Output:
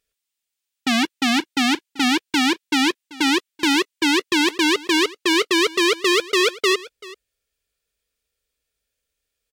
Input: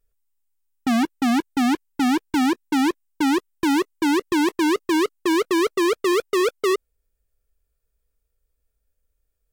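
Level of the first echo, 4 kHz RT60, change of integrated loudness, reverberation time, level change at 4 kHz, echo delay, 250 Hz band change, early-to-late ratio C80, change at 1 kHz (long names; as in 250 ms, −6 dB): −20.0 dB, no reverb audible, +2.5 dB, no reverb audible, +11.0 dB, 386 ms, −1.0 dB, no reverb audible, +0.5 dB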